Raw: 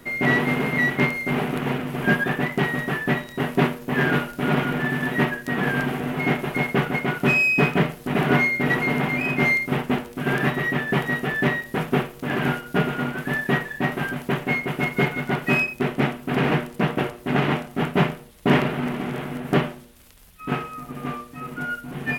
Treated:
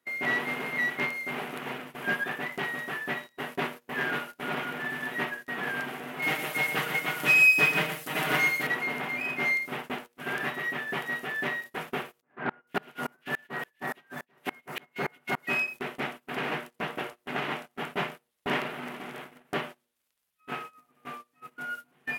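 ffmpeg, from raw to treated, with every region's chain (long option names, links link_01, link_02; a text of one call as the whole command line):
ffmpeg -i in.wav -filter_complex "[0:a]asettb=1/sr,asplit=3[link_01][link_02][link_03];[link_01]atrim=end=6.224[link_04];[link_02]atrim=start=6.22:end=8.67,asetpts=PTS-STARTPTS,afade=type=in:duration=0.004:curve=qsin,afade=type=out:start_time=2.446:duration=0.004:curve=qsin,highshelf=frequency=3700:gain=11.5,aecho=1:1:6.4:0.62,atrim=end_sample=108045,aecho=1:1:118:0.376,atrim=end_sample=108045[link_05];[link_03]atrim=start=8.666[link_06];[link_04][link_05]acrossfade=duration=0.004:curve1=hsin:curve2=qsin[link_07];[link_07][link_06]acrossfade=duration=0.004:curve1=qsin:curve2=hsin,asettb=1/sr,asplit=3[link_08][link_09][link_10];[link_08]atrim=end=12.214[link_11];[link_09]atrim=start=12.21:end=15.47,asetpts=PTS-STARTPTS,afade=type=in:duration=0.004:curve=qsin,afade=type=out:start_time=3.256:duration=0.004:curve=qsin,acrossover=split=2100[link_12][link_13];[link_13]adelay=460[link_14];[link_12][link_14]amix=inputs=2:normalize=0,atrim=end_sample=143766,aeval=exprs='0.422*sin(PI/2*1.78*val(0)/0.422)':channel_layout=same,aeval=exprs='val(0)*pow(10,-32*if(lt(mod(-3.5*n/s,1),2*abs(-3.5)/1000),1-mod(-3.5*n/s,1)/(2*abs(-3.5)/1000),(mod(-3.5*n/s,1)-2*abs(-3.5)/1000)/(1-2*abs(-3.5)/1000))/20)':channel_layout=same[link_15];[link_10]atrim=start=15.466[link_16];[link_11][link_15]acrossfade=duration=0.004:curve1=hsin:curve2=qsin[link_17];[link_17][link_16]acrossfade=duration=0.004:curve1=qsin:curve2=hsin,highpass=frequency=760:poles=1,agate=range=-20dB:threshold=-35dB:ratio=16:detection=peak,volume=-5.5dB" out.wav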